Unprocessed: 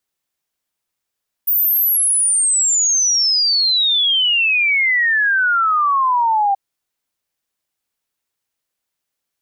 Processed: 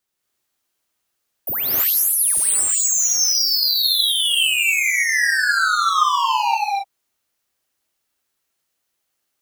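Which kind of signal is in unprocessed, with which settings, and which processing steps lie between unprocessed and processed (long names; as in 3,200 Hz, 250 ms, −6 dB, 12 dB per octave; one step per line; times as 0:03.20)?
exponential sine sweep 15,000 Hz → 780 Hz 5.08 s −12.5 dBFS
gain into a clipping stage and back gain 22.5 dB
reverb whose tail is shaped and stops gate 300 ms rising, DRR −3.5 dB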